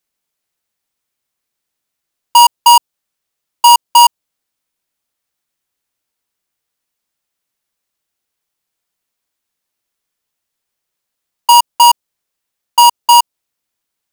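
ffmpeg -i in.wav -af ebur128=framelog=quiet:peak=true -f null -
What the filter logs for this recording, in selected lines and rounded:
Integrated loudness:
  I:          -9.0 LUFS
  Threshold: -19.2 LUFS
Loudness range:
  LRA:         6.0 LU
  Threshold: -33.3 LUFS
  LRA low:   -17.4 LUFS
  LRA high:  -11.4 LUFS
True peak:
  Peak:       -0.9 dBFS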